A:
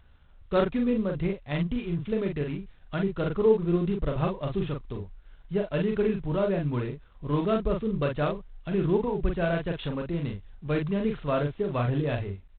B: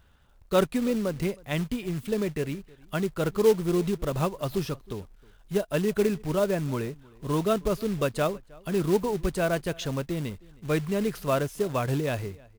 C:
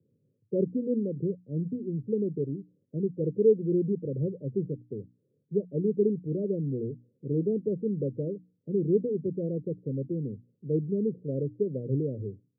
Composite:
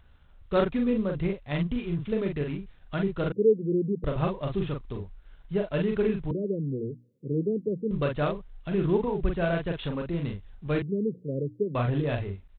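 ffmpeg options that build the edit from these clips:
-filter_complex "[2:a]asplit=3[s0][s1][s2];[0:a]asplit=4[s3][s4][s5][s6];[s3]atrim=end=3.322[s7];[s0]atrim=start=3.318:end=4.042[s8];[s4]atrim=start=4.038:end=6.312[s9];[s1]atrim=start=6.308:end=7.912[s10];[s5]atrim=start=7.908:end=10.822[s11];[s2]atrim=start=10.818:end=11.752[s12];[s6]atrim=start=11.748[s13];[s7][s8]acrossfade=d=0.004:c1=hsin:c2=hsin[s14];[s14][s9]acrossfade=d=0.004:c1=hsin:c2=hsin[s15];[s15][s10]acrossfade=d=0.004:c1=hsin:c2=hsin[s16];[s16][s11]acrossfade=d=0.004:c1=hsin:c2=hsin[s17];[s17][s12]acrossfade=d=0.004:c1=hsin:c2=hsin[s18];[s18][s13]acrossfade=d=0.004:c1=hsin:c2=hsin"

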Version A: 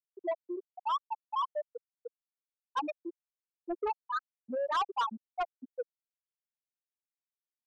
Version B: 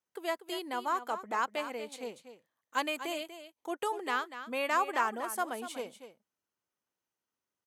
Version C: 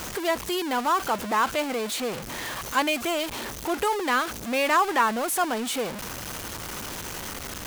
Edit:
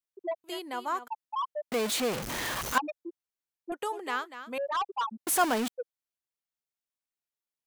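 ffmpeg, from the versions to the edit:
-filter_complex "[1:a]asplit=2[s0][s1];[2:a]asplit=2[s2][s3];[0:a]asplit=5[s4][s5][s6][s7][s8];[s4]atrim=end=0.442[s9];[s0]atrim=start=0.438:end=1.082[s10];[s5]atrim=start=1.078:end=1.722[s11];[s2]atrim=start=1.718:end=2.782[s12];[s6]atrim=start=2.778:end=3.722[s13];[s1]atrim=start=3.718:end=4.582[s14];[s7]atrim=start=4.578:end=5.272[s15];[s3]atrim=start=5.268:end=5.682[s16];[s8]atrim=start=5.678[s17];[s9][s10]acrossfade=d=0.004:c1=hsin:c2=hsin[s18];[s18][s11]acrossfade=d=0.004:c1=hsin:c2=hsin[s19];[s19][s12]acrossfade=d=0.004:c1=hsin:c2=hsin[s20];[s20][s13]acrossfade=d=0.004:c1=hsin:c2=hsin[s21];[s21][s14]acrossfade=d=0.004:c1=hsin:c2=hsin[s22];[s22][s15]acrossfade=d=0.004:c1=hsin:c2=hsin[s23];[s23][s16]acrossfade=d=0.004:c1=hsin:c2=hsin[s24];[s24][s17]acrossfade=d=0.004:c1=hsin:c2=hsin"

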